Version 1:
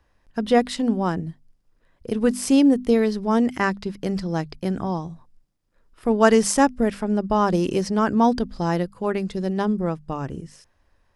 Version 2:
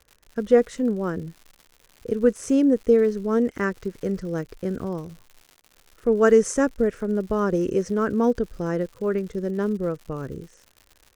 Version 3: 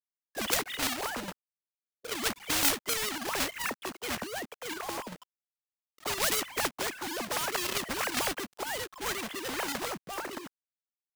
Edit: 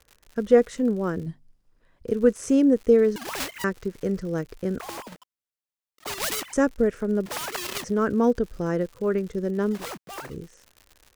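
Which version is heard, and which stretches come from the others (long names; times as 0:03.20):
2
0:01.26–0:02.07: punch in from 1
0:03.16–0:03.64: punch in from 3
0:04.80–0:06.53: punch in from 3
0:07.26–0:07.84: punch in from 3
0:09.78–0:10.29: punch in from 3, crossfade 0.16 s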